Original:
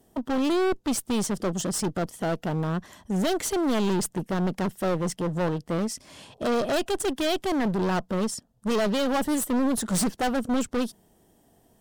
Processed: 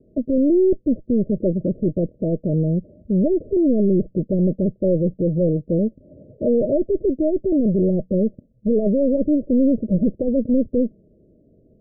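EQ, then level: Chebyshev low-pass 620 Hz, order 8; +8.5 dB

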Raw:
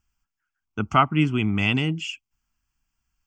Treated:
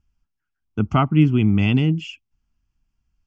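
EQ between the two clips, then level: distance through air 170 m; peaking EQ 1.5 kHz -11.5 dB 2.9 oct; +8.0 dB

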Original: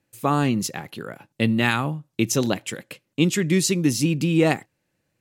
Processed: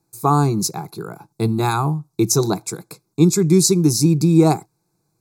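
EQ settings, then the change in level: Butterworth band-stop 3 kHz, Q 1.8; static phaser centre 370 Hz, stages 8; +7.5 dB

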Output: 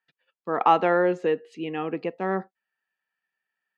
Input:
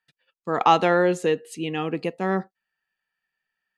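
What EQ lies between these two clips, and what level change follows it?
dynamic bell 3.8 kHz, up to -7 dB, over -45 dBFS, Q 1.6; Bessel high-pass 250 Hz, order 2; distance through air 220 m; 0.0 dB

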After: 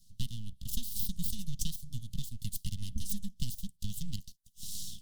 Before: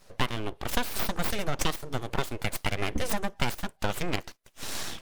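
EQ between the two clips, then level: elliptic band-stop 210–3000 Hz, stop band 40 dB; static phaser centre 990 Hz, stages 4; -2.0 dB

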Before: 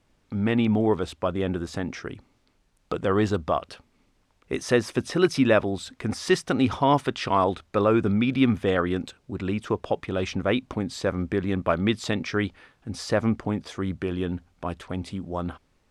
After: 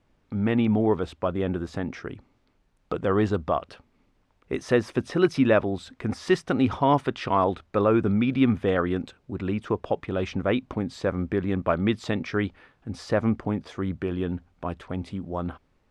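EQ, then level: treble shelf 4.1 kHz -11.5 dB; 0.0 dB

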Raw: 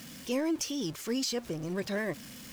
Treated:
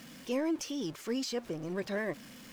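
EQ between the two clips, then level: peaking EQ 70 Hz -9 dB 2.3 oct; treble shelf 3.5 kHz -8.5 dB; 0.0 dB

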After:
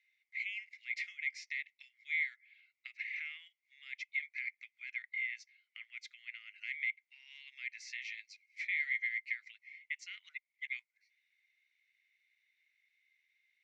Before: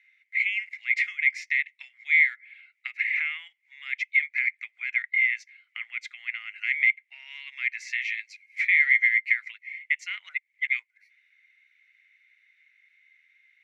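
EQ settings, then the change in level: band-pass filter 4.9 kHz, Q 1.6; -4.5 dB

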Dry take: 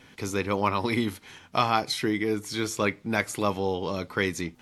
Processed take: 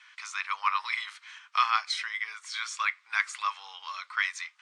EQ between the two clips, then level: Chebyshev band-pass 1.1–8.9 kHz, order 4; treble shelf 5.6 kHz -11 dB; +3.0 dB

